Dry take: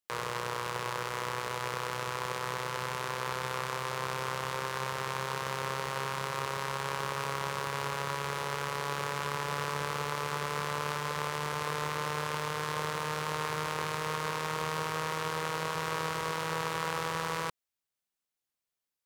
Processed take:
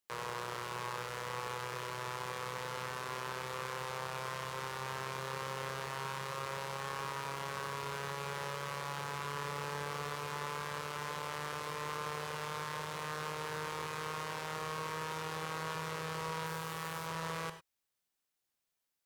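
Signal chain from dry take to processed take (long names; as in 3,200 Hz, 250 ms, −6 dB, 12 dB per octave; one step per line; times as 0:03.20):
0:16.46–0:17.07: high-shelf EQ 11,000 Hz +11.5 dB
brickwall limiter −27.5 dBFS, peak gain reduction 13 dB
reverb whose tail is shaped and stops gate 120 ms rising, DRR 9 dB
level +2 dB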